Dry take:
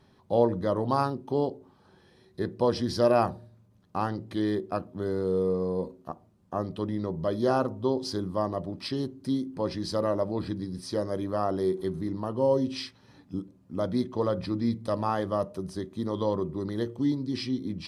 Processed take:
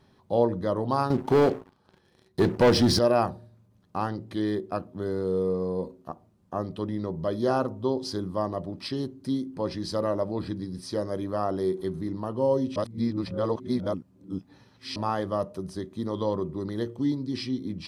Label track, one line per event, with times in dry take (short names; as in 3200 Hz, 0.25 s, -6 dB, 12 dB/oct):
1.100000	2.990000	sample leveller passes 3
12.760000	14.960000	reverse